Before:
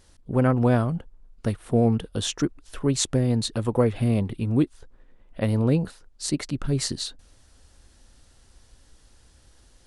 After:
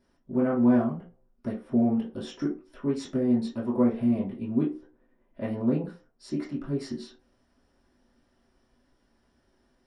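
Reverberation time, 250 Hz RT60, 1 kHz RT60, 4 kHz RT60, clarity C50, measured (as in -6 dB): 0.40 s, 0.35 s, 0.35 s, 0.20 s, 8.5 dB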